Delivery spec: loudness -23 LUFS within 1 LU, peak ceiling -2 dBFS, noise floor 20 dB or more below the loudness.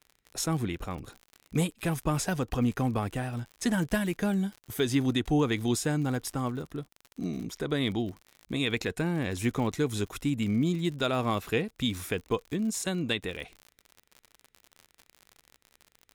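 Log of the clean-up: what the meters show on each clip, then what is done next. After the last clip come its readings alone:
tick rate 53 per s; loudness -30.0 LUFS; peak level -15.5 dBFS; loudness target -23.0 LUFS
-> de-click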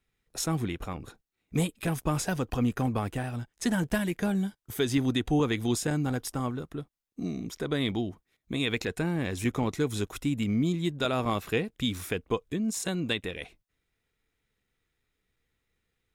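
tick rate 0.37 per s; loudness -30.0 LUFS; peak level -15.5 dBFS; loudness target -23.0 LUFS
-> trim +7 dB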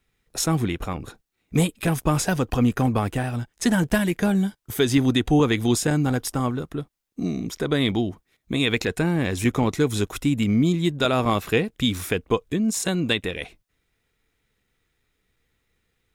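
loudness -23.0 LUFS; peak level -8.5 dBFS; noise floor -74 dBFS

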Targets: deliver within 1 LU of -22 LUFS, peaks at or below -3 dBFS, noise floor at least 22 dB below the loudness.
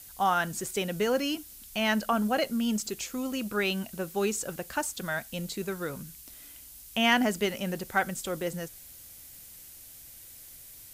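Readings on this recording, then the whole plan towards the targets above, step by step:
noise floor -49 dBFS; noise floor target -52 dBFS; loudness -29.5 LUFS; peak level -12.5 dBFS; loudness target -22.0 LUFS
-> noise reduction 6 dB, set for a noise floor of -49 dBFS; trim +7.5 dB

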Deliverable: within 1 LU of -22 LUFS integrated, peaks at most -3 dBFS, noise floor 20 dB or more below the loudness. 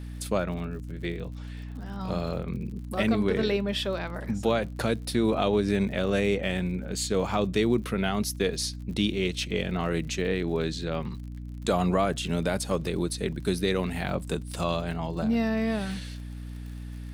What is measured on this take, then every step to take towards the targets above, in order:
tick rate 51 per s; hum 60 Hz; highest harmonic 300 Hz; hum level -35 dBFS; loudness -28.5 LUFS; peak level -10.5 dBFS; loudness target -22.0 LUFS
-> de-click; hum notches 60/120/180/240/300 Hz; trim +6.5 dB

